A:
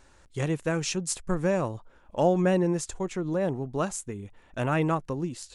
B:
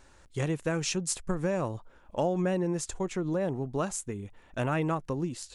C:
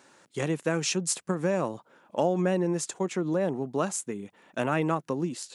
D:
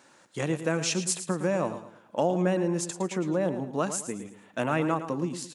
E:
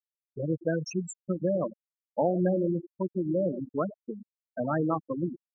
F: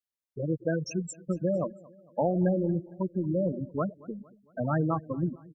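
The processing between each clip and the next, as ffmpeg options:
ffmpeg -i in.wav -af "acompressor=threshold=-25dB:ratio=4" out.wav
ffmpeg -i in.wav -af "highpass=frequency=160:width=0.5412,highpass=frequency=160:width=1.3066,volume=3dB" out.wav
ffmpeg -i in.wav -filter_complex "[0:a]bandreject=frequency=400:width=12,asplit=2[link_01][link_02];[link_02]aecho=0:1:111|222|333|444:0.282|0.101|0.0365|0.0131[link_03];[link_01][link_03]amix=inputs=2:normalize=0" out.wav
ffmpeg -i in.wav -af "afftfilt=real='re*gte(hypot(re,im),0.141)':imag='im*gte(hypot(re,im),0.141)':win_size=1024:overlap=0.75" out.wav
ffmpeg -i in.wav -af "asubboost=boost=4:cutoff=150,aecho=1:1:228|456|684:0.075|0.0382|0.0195" out.wav

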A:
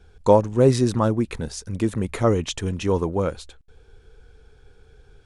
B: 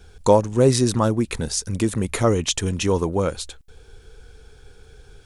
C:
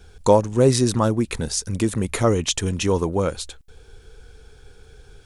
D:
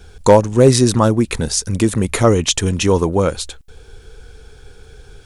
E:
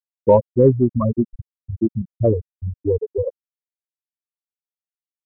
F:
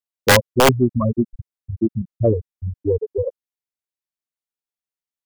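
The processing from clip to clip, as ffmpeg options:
ffmpeg -i in.wav -filter_complex "[0:a]highshelf=frequency=4200:gain=10.5,asplit=2[link_01][link_02];[link_02]acompressor=threshold=-27dB:ratio=6,volume=-0.5dB[link_03];[link_01][link_03]amix=inputs=2:normalize=0,volume=-1.5dB" out.wav
ffmpeg -i in.wav -af anull out.wav
ffmpeg -i in.wav -af "asoftclip=type=hard:threshold=-7dB,volume=6dB" out.wav
ffmpeg -i in.wav -af "afftfilt=real='re*gte(hypot(re,im),1.26)':imag='im*gte(hypot(re,im),1.26)':win_size=1024:overlap=0.75,aeval=exprs='1.12*(cos(1*acos(clip(val(0)/1.12,-1,1)))-cos(1*PI/2))+0.00794*(cos(6*acos(clip(val(0)/1.12,-1,1)))-cos(6*PI/2))':channel_layout=same,volume=-2.5dB" out.wav
ffmpeg -i in.wav -af "aeval=exprs='(mod(1.88*val(0)+1,2)-1)/1.88':channel_layout=same" out.wav

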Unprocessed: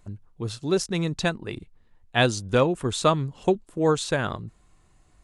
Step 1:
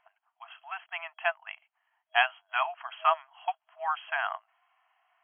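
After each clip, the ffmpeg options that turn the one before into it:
ffmpeg -i in.wav -af "afftfilt=real='re*between(b*sr/4096,640,3300)':imag='im*between(b*sr/4096,640,3300)':win_size=4096:overlap=0.75" out.wav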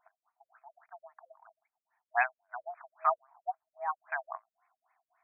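ffmpeg -i in.wav -af "afftfilt=real='re*lt(b*sr/1024,540*pow(2600/540,0.5+0.5*sin(2*PI*3.7*pts/sr)))':imag='im*lt(b*sr/1024,540*pow(2600/540,0.5+0.5*sin(2*PI*3.7*pts/sr)))':win_size=1024:overlap=0.75,volume=-2.5dB" out.wav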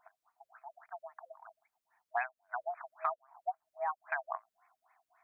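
ffmpeg -i in.wav -af "acompressor=threshold=-36dB:ratio=6,volume=4.5dB" out.wav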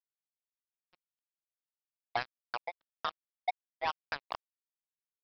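ffmpeg -i in.wav -af "alimiter=limit=-23.5dB:level=0:latency=1:release=262,aresample=11025,acrusher=bits=4:mix=0:aa=0.5,aresample=44100,volume=1.5dB" out.wav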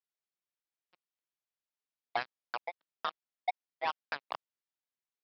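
ffmpeg -i in.wav -af "highpass=180,lowpass=5100" out.wav

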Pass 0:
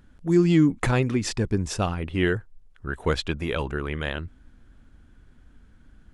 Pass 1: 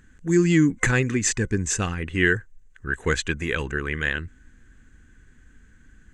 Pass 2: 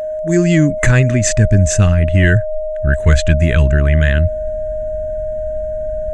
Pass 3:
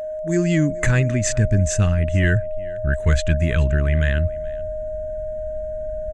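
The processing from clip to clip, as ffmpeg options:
ffmpeg -i in.wav -af "superequalizer=8b=0.398:9b=0.562:11b=2.82:12b=1.58:15b=3.98" out.wav
ffmpeg -i in.wav -af "asubboost=boost=10.5:cutoff=160,apsyclip=8.5dB,aeval=exprs='val(0)+0.158*sin(2*PI*620*n/s)':channel_layout=same,volume=-3dB" out.wav
ffmpeg -i in.wav -af "aecho=1:1:427:0.0794,volume=-6.5dB" out.wav

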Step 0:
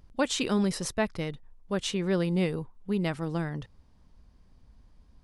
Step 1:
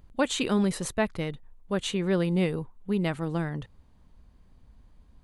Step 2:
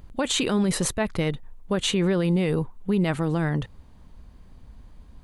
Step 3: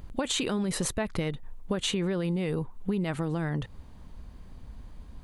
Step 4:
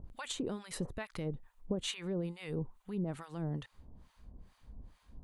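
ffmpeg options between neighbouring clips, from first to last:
ffmpeg -i in.wav -af "equalizer=frequency=5300:width=4.5:gain=-10.5,volume=1.5dB" out.wav
ffmpeg -i in.wav -af "alimiter=limit=-23dB:level=0:latency=1:release=32,volume=8.5dB" out.wav
ffmpeg -i in.wav -af "acompressor=threshold=-28dB:ratio=6,volume=2dB" out.wav
ffmpeg -i in.wav -filter_complex "[0:a]acrossover=split=840[link_01][link_02];[link_01]aeval=exprs='val(0)*(1-1/2+1/2*cos(2*PI*2.3*n/s))':channel_layout=same[link_03];[link_02]aeval=exprs='val(0)*(1-1/2-1/2*cos(2*PI*2.3*n/s))':channel_layout=same[link_04];[link_03][link_04]amix=inputs=2:normalize=0,volume=-4.5dB" out.wav

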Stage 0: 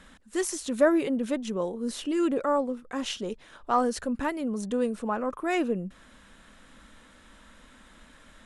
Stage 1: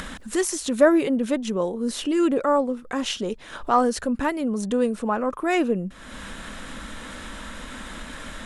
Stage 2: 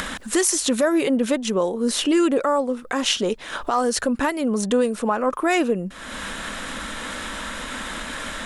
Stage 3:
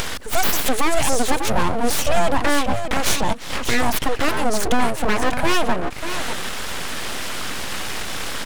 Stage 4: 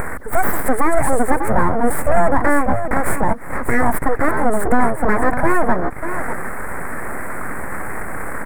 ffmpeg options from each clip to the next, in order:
ffmpeg -i in.wav -af "acompressor=mode=upward:threshold=-29dB:ratio=2.5,volume=5dB" out.wav
ffmpeg -i in.wav -filter_complex "[0:a]lowshelf=frequency=260:gain=-8.5,acrossover=split=4000[link_01][link_02];[link_01]alimiter=limit=-19.5dB:level=0:latency=1:release=258[link_03];[link_03][link_02]amix=inputs=2:normalize=0,volume=8dB" out.wav
ffmpeg -i in.wav -af "asoftclip=type=tanh:threshold=-12.5dB,aecho=1:1:594:0.376,aeval=exprs='abs(val(0))':channel_layout=same,volume=6dB" out.wav
ffmpeg -i in.wav -filter_complex "[0:a]asuperstop=centerf=4200:order=12:qfactor=0.7,asplit=2[link_01][link_02];[link_02]adynamicsmooth=sensitivity=5.5:basefreq=4900,volume=1dB[link_03];[link_01][link_03]amix=inputs=2:normalize=0,acrusher=bits=8:mix=0:aa=0.5,volume=-2.5dB" out.wav

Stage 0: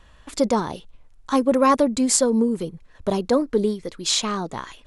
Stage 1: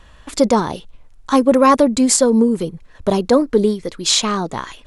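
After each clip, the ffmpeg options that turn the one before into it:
ffmpeg -i in.wav -af "alimiter=level_in=7dB:limit=-1dB:release=50:level=0:latency=1,volume=-1dB" out.wav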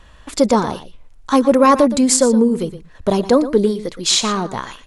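ffmpeg -i in.wav -af "aecho=1:1:118:0.2" out.wav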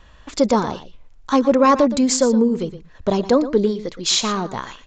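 ffmpeg -i in.wav -af "aresample=16000,aresample=44100,volume=-2.5dB" out.wav

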